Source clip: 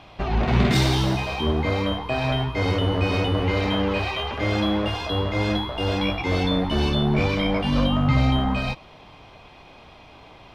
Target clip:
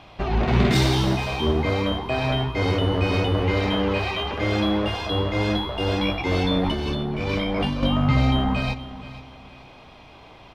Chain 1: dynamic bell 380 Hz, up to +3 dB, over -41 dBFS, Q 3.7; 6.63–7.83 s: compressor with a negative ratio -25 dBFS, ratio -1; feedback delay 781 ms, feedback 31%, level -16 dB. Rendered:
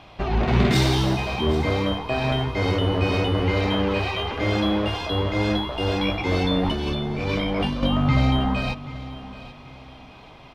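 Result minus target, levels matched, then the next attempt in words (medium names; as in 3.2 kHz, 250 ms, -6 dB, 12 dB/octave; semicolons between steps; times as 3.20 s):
echo 312 ms late
dynamic bell 380 Hz, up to +3 dB, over -41 dBFS, Q 3.7; 6.63–7.83 s: compressor with a negative ratio -25 dBFS, ratio -1; feedback delay 469 ms, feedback 31%, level -16 dB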